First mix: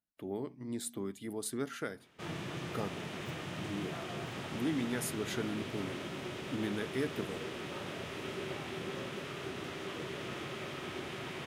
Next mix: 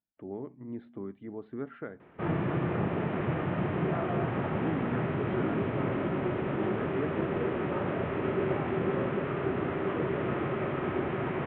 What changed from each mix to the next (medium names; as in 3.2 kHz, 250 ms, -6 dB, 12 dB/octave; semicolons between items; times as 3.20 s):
background +12.0 dB; master: add Gaussian low-pass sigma 4.6 samples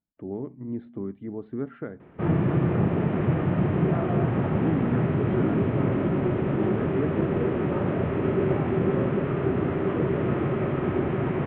master: add bass shelf 430 Hz +9.5 dB